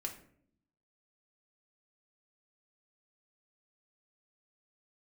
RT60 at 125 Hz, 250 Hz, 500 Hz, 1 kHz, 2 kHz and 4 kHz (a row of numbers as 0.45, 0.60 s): 1.0, 1.0, 0.70, 0.50, 0.50, 0.35 s